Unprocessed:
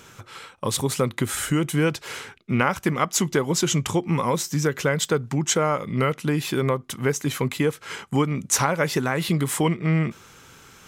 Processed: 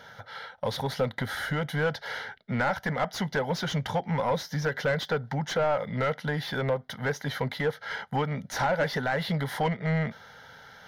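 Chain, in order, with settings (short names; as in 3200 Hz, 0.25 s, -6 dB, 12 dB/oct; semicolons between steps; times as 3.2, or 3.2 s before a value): fixed phaser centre 1700 Hz, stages 8; overdrive pedal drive 20 dB, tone 1100 Hz, clips at -11 dBFS; gain -4 dB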